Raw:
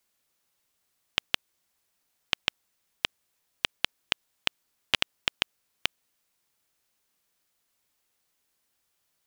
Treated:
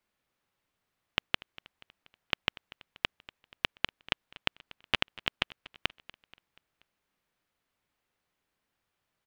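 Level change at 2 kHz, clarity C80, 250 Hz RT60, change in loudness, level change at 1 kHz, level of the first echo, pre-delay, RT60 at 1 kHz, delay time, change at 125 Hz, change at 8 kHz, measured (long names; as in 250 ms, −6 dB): −1.5 dB, no reverb audible, no reverb audible, −3.0 dB, 0.0 dB, −20.0 dB, no reverb audible, no reverb audible, 240 ms, +3.0 dB, −12.0 dB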